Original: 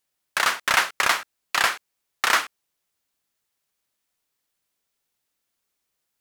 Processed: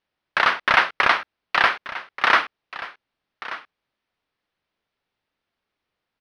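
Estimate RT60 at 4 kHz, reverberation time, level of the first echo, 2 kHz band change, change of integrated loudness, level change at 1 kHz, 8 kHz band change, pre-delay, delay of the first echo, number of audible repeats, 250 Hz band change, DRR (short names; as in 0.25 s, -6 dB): none, none, -15.5 dB, +3.5 dB, +2.5 dB, +4.5 dB, under -15 dB, none, 1.182 s, 1, +5.0 dB, none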